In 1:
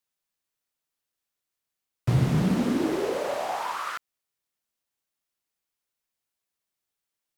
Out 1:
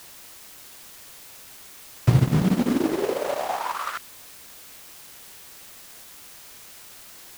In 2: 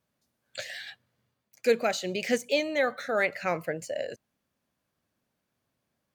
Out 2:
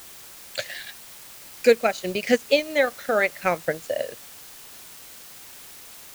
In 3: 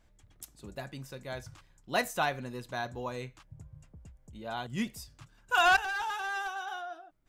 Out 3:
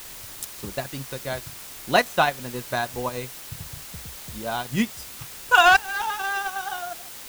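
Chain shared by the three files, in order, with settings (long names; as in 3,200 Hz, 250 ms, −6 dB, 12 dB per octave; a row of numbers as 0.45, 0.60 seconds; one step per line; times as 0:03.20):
transient designer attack +5 dB, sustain −11 dB
in parallel at −8.5 dB: bit-depth reduction 6 bits, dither triangular
on the sum: loudness normalisation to −24 LKFS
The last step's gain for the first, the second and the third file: −0.5, +0.5, +4.5 decibels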